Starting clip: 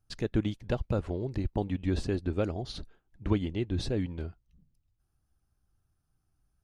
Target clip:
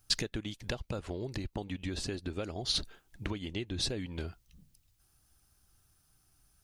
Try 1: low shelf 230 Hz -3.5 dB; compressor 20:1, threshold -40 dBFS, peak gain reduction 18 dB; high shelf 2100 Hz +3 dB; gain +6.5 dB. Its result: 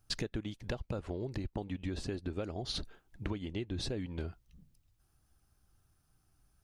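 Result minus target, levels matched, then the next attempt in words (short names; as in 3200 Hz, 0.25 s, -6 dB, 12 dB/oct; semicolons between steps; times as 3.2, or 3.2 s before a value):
4000 Hz band -4.5 dB
low shelf 230 Hz -3.5 dB; compressor 20:1, threshold -40 dBFS, peak gain reduction 18 dB; high shelf 2100 Hz +12.5 dB; gain +6.5 dB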